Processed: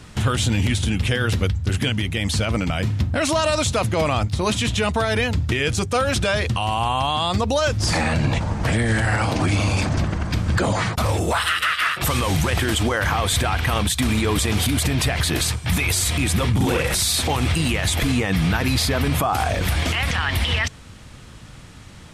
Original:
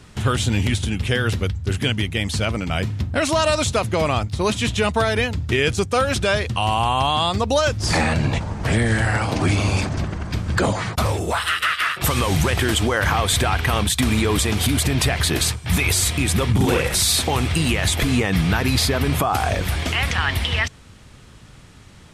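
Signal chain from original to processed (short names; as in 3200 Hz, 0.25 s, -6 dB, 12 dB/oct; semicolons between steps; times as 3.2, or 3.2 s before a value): notch 400 Hz, Q 12; limiter -15 dBFS, peak gain reduction 7 dB; gain +3.5 dB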